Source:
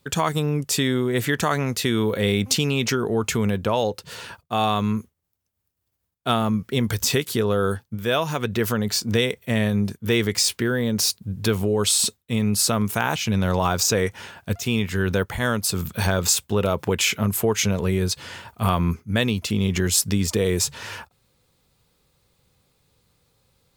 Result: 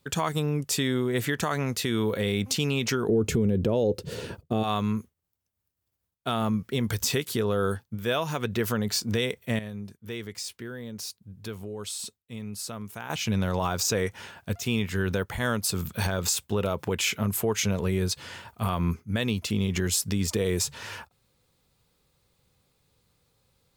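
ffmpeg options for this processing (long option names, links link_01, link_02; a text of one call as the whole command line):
ffmpeg -i in.wav -filter_complex "[0:a]asplit=3[link_01][link_02][link_03];[link_01]afade=type=out:start_time=3.08:duration=0.02[link_04];[link_02]lowshelf=frequency=640:width_type=q:width=1.5:gain=13,afade=type=in:start_time=3.08:duration=0.02,afade=type=out:start_time=4.62:duration=0.02[link_05];[link_03]afade=type=in:start_time=4.62:duration=0.02[link_06];[link_04][link_05][link_06]amix=inputs=3:normalize=0,asplit=3[link_07][link_08][link_09];[link_07]atrim=end=9.592[link_10];[link_08]atrim=start=9.588:end=13.102,asetpts=PTS-STARTPTS,volume=-11.5dB[link_11];[link_09]atrim=start=13.098[link_12];[link_10][link_11]acrossfade=duration=0.004:curve1=hsin:curve2=hsin[link_13];[link_13][link_12]acrossfade=duration=0.004:curve1=hsin:curve2=hsin,alimiter=limit=-11dB:level=0:latency=1:release=100,volume=-4dB" out.wav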